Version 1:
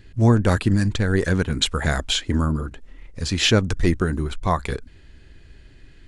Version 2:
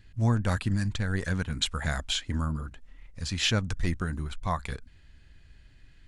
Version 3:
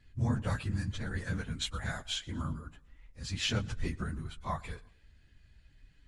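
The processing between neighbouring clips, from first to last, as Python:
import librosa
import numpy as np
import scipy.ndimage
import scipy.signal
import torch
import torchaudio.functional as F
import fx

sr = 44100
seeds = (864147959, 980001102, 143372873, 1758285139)

y1 = fx.peak_eq(x, sr, hz=380.0, db=-9.5, octaves=1.0)
y1 = y1 * librosa.db_to_amplitude(-7.0)
y2 = fx.phase_scramble(y1, sr, seeds[0], window_ms=50)
y2 = fx.echo_feedback(y2, sr, ms=117, feedback_pct=44, wet_db=-23.0)
y2 = y2 * librosa.db_to_amplitude(-6.5)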